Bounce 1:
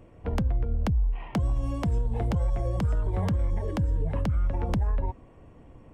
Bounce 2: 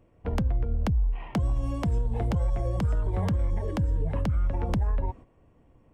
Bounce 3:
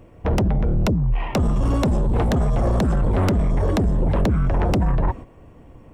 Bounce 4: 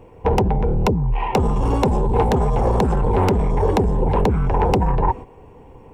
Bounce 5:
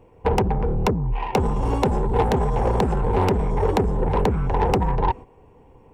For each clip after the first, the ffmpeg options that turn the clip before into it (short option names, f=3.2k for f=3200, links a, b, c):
-af "agate=range=-9dB:threshold=-42dB:ratio=16:detection=peak"
-af "aeval=exprs='0.126*sin(PI/2*2.24*val(0)/0.126)':c=same,volume=3dB"
-af "superequalizer=7b=2.51:9b=3.16:12b=1.41"
-af "aeval=exprs='0.531*(cos(1*acos(clip(val(0)/0.531,-1,1)))-cos(1*PI/2))+0.0335*(cos(7*acos(clip(val(0)/0.531,-1,1)))-cos(7*PI/2))':c=same,volume=-2dB"